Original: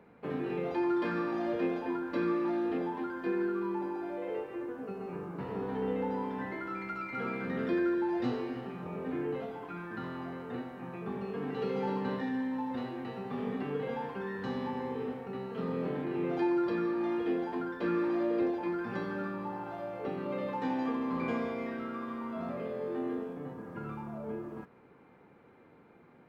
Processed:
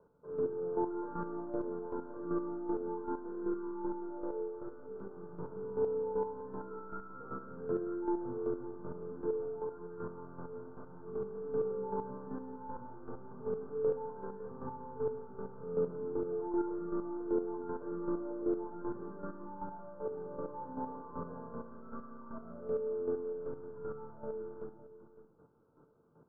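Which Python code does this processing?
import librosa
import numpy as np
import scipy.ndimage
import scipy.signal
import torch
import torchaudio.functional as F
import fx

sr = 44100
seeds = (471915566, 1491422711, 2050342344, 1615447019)

y = fx.rattle_buzz(x, sr, strikes_db=-47.0, level_db=-27.0)
y = scipy.signal.sosfilt(scipy.signal.cheby1(8, 1.0, 1500.0, 'lowpass', fs=sr, output='sos'), y)
y = fx.comb_fb(y, sr, f0_hz=440.0, decay_s=0.38, harmonics='all', damping=0.0, mix_pct=80)
y = fx.room_shoebox(y, sr, seeds[0], volume_m3=3700.0, walls='furnished', distance_m=5.2)
y = fx.chopper(y, sr, hz=2.6, depth_pct=60, duty_pct=20)
y = y + 10.0 ** (-15.0 / 20.0) * np.pad(y, (int(558 * sr / 1000.0), 0))[:len(y)]
y = y * 10.0 ** (3.5 / 20.0)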